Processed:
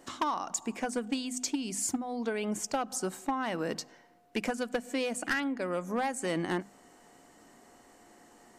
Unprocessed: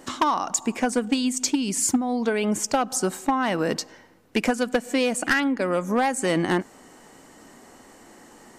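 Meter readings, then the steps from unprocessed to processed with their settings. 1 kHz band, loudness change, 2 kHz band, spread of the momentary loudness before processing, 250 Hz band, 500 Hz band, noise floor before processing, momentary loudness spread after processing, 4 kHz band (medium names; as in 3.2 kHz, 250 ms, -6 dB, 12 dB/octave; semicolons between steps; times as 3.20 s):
-9.0 dB, -9.5 dB, -9.0 dB, 4 LU, -10.0 dB, -9.0 dB, -51 dBFS, 4 LU, -9.0 dB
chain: hum notches 50/100/150/200/250 Hz; whistle 710 Hz -55 dBFS; trim -9 dB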